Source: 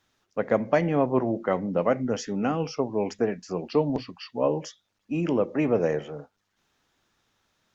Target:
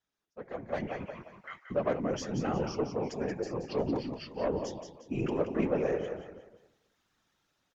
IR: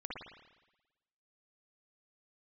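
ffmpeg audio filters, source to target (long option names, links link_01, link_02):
-filter_complex "[0:a]asettb=1/sr,asplit=3[link_01][link_02][link_03];[link_01]atrim=end=0.874[link_04];[link_02]atrim=start=0.87:end=1.71,asetpts=PTS-STARTPTS,afade=type=in:duration=0.004:curve=qsin,afade=type=out:start_time=0.836:duration=0.004:curve=qsin,highpass=frequency=1500:width=0.5412,highpass=frequency=1500:width=1.3066[link_05];[link_03]atrim=start=1.706[link_06];[link_04][link_05]acrossfade=duration=0.004:curve1=hsin:curve2=qsin[link_07];[link_07][link_06]acrossfade=duration=0.004:curve1=qsin:curve2=hsin,aecho=1:1:178|356|534|712:0.398|0.143|0.0516|0.0186,flanger=delay=4:depth=2.9:regen=-39:speed=1:shape=triangular,asoftclip=type=tanh:threshold=-20dB,dynaudnorm=framelen=150:gausssize=11:maxgain=12dB,afftfilt=real='hypot(re,im)*cos(2*PI*random(0))':imag='hypot(re,im)*sin(2*PI*random(1))':win_size=512:overlap=0.75,volume=-7dB" -ar 48000 -c:a libmp3lame -b:a 96k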